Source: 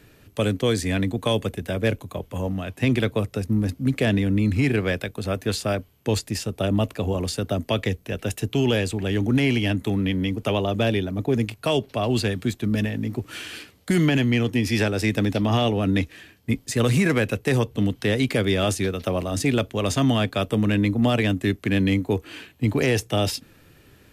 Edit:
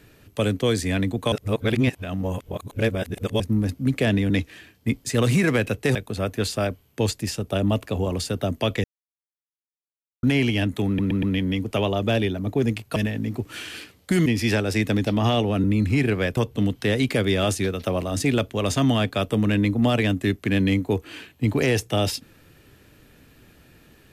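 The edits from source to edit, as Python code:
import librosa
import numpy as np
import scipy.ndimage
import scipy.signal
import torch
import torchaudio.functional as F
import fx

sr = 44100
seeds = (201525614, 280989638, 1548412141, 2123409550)

y = fx.edit(x, sr, fx.reverse_span(start_s=1.32, length_s=2.08),
    fx.swap(start_s=4.3, length_s=0.73, other_s=15.92, other_length_s=1.65),
    fx.silence(start_s=7.92, length_s=1.39),
    fx.stutter(start_s=9.95, slice_s=0.12, count=4),
    fx.cut(start_s=11.68, length_s=1.07),
    fx.cut(start_s=14.05, length_s=0.49), tone=tone)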